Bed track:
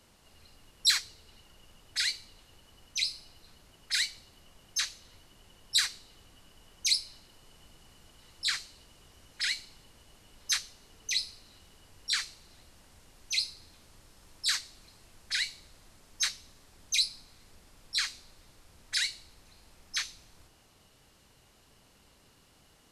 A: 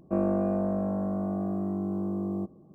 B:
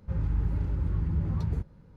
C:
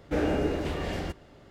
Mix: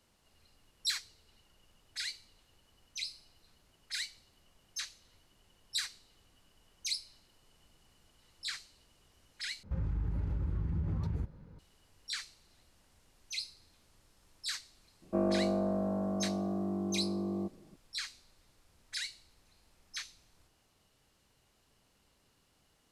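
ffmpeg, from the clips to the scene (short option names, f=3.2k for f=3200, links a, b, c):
-filter_complex "[0:a]volume=-9dB[a];[2:a]acompressor=threshold=-30dB:ratio=6:attack=3.2:release=140:knee=1:detection=peak[b];[1:a]equalizer=f=120:t=o:w=0.94:g=-5.5[c];[a]asplit=2[d][e];[d]atrim=end=9.634[f];[b]atrim=end=1.96[g];[e]atrim=start=11.586[h];[c]atrim=end=2.74,asetpts=PTS-STARTPTS,volume=-3dB,afade=t=in:d=0.004:c=hsin,afade=t=out:st=2.736:d=0.004:c=hsin,adelay=15020[i];[f][g]acrossfade=d=0.004:c1=hsin:c2=hsin[j];[j][h]acrossfade=d=0.004:c1=hsin:c2=hsin[k];[k][i]amix=inputs=2:normalize=0"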